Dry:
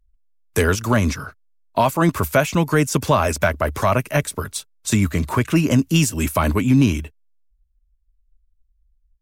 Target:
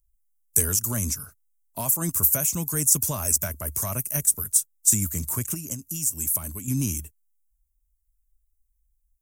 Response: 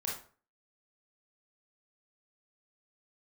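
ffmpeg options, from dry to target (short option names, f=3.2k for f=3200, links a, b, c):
-filter_complex "[0:a]bass=f=250:g=9,treble=f=4k:g=10,asettb=1/sr,asplit=3[a][b][c];[a]atrim=end=5.544[d];[b]atrim=start=5.54:end=6.68,asetpts=PTS-STARTPTS,afade=t=in:d=0.004:c=qsin,afade=t=out:st=1.136:d=0.004:c=qsin,acompressor=threshold=-17dB:ratio=6[e];[c]atrim=start=6.676[f];[d][e]acrossfade=d=0.004:c1=hsin:c2=qsin[g];[g][f]acrossfade=d=0.004:c1=qsin:c2=hsin,aexciter=amount=9.2:drive=5:freq=5.9k,volume=-17.5dB"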